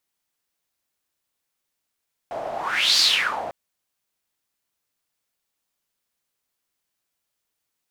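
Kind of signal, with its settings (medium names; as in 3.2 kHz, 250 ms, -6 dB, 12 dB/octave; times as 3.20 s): whoosh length 1.20 s, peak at 0.68 s, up 0.48 s, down 0.49 s, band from 670 Hz, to 4.6 kHz, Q 5.8, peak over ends 13 dB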